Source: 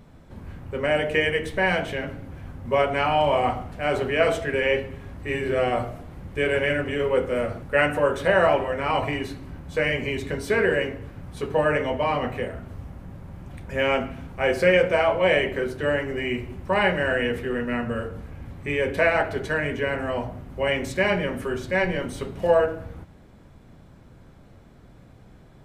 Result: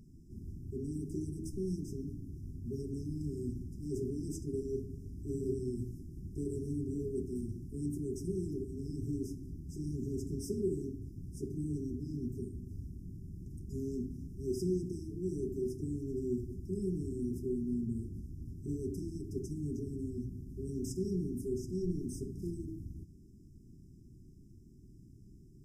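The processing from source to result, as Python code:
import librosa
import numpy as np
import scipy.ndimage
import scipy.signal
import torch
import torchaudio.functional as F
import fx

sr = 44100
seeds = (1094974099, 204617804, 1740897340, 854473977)

y = fx.brickwall_bandstop(x, sr, low_hz=410.0, high_hz=4900.0)
y = y * 10.0 ** (-6.0 / 20.0)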